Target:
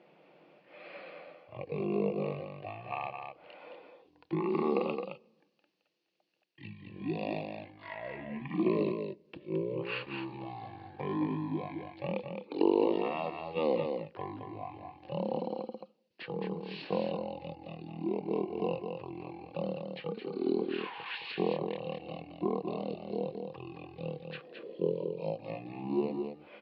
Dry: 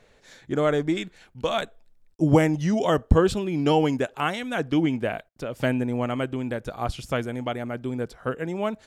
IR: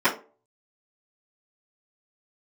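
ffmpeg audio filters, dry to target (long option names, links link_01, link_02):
-af "acompressor=threshold=-26dB:ratio=4,asetrate=14685,aresample=44100,highpass=frequency=210:width=0.5412,highpass=frequency=210:width=1.3066,equalizer=frequency=240:width_type=q:width=4:gain=-9,equalizer=frequency=340:width_type=q:width=4:gain=9,equalizer=frequency=500:width_type=q:width=4:gain=5,equalizer=frequency=1300:width_type=q:width=4:gain=-7,equalizer=frequency=2700:width_type=q:width=4:gain=9,equalizer=frequency=4400:width_type=q:width=4:gain=8,lowpass=frequency=5200:width=0.5412,lowpass=frequency=5200:width=1.3066,aecho=1:1:217:0.501"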